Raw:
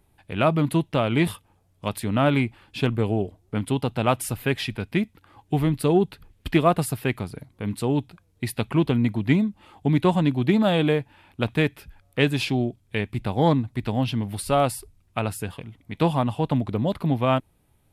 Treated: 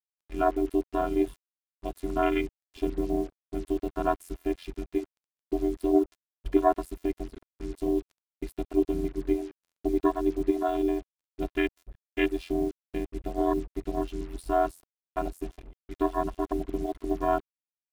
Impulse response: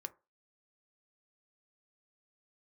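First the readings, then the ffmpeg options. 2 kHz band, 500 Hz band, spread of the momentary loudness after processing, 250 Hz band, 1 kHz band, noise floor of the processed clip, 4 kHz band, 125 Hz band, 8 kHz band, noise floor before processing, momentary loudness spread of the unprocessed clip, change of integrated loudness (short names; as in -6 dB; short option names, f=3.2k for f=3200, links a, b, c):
-9.5 dB, -3.0 dB, 12 LU, -5.5 dB, -3.5 dB, under -85 dBFS, -15.0 dB, -19.0 dB, under -10 dB, -64 dBFS, 11 LU, -5.5 dB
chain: -filter_complex "[0:a]afwtdn=0.0562,asplit=2[a][b];[b]acompressor=threshold=-31dB:ratio=5,volume=2.5dB[c];[a][c]amix=inputs=2:normalize=0,afftfilt=real='hypot(re,im)*cos(PI*b)':imag='0':win_size=512:overlap=0.75,aeval=exprs='val(0)*sin(2*PI*43*n/s)':c=same,acrusher=bits=7:mix=0:aa=0.5"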